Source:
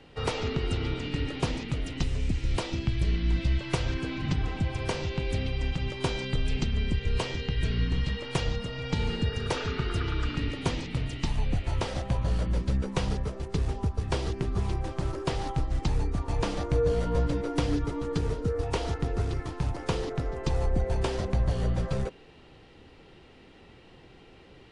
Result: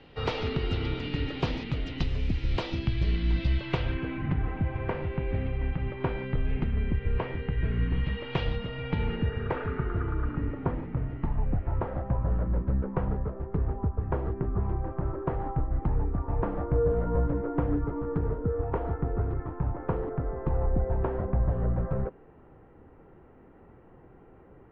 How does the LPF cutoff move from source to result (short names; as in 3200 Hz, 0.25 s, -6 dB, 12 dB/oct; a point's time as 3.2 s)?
LPF 24 dB/oct
3.54 s 4500 Hz
4.27 s 2100 Hz
7.73 s 2100 Hz
8.43 s 3400 Hz
10.12 s 1500 Hz